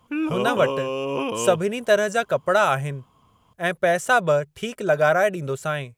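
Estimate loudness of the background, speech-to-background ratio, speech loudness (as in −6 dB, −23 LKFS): −27.0 LKFS, 5.0 dB, −22.0 LKFS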